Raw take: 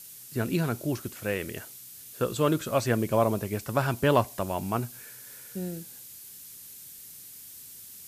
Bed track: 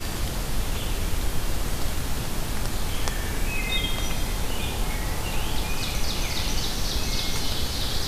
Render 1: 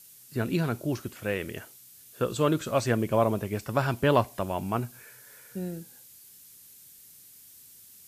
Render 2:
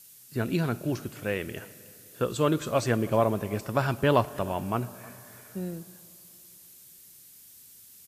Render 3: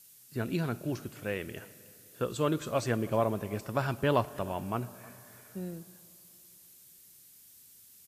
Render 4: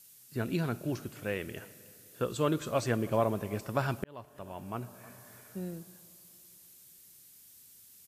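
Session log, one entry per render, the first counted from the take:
noise reduction from a noise print 6 dB
single-tap delay 314 ms −22.5 dB; comb and all-pass reverb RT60 3.5 s, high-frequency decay 0.7×, pre-delay 30 ms, DRR 18.5 dB
level −4.5 dB
0:04.04–0:05.27: fade in

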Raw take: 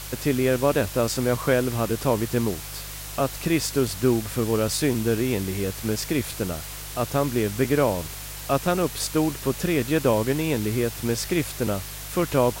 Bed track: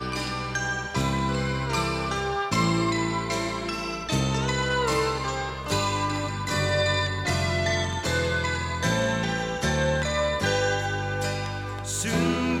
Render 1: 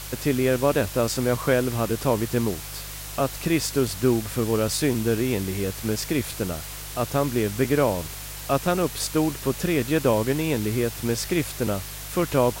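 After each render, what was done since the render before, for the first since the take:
no processing that can be heard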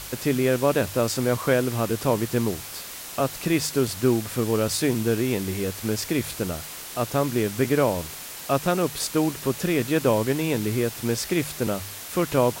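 hum removal 50 Hz, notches 3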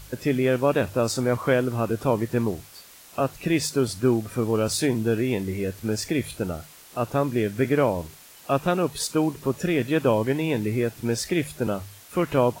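noise reduction from a noise print 11 dB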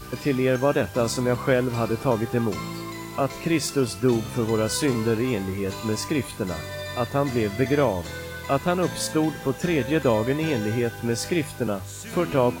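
mix in bed track −10 dB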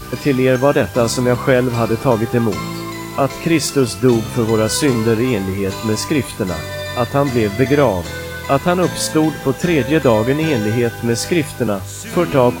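level +8 dB
brickwall limiter −1 dBFS, peak gain reduction 1 dB

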